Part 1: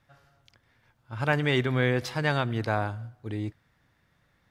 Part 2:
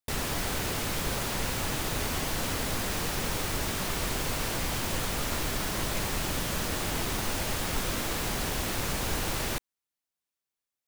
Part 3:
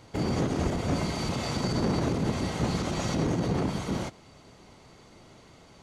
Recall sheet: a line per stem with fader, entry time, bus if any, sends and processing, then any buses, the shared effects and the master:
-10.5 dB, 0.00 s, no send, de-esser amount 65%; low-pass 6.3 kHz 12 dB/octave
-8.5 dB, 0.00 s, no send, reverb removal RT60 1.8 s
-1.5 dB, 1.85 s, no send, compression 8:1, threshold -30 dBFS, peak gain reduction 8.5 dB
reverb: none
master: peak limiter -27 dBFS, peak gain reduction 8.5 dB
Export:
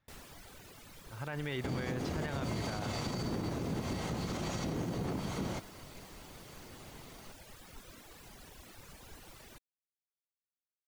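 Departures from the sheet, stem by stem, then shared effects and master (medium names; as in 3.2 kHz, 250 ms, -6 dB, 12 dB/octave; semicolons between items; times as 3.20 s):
stem 2 -8.5 dB -> -19.0 dB; stem 3: entry 1.85 s -> 1.50 s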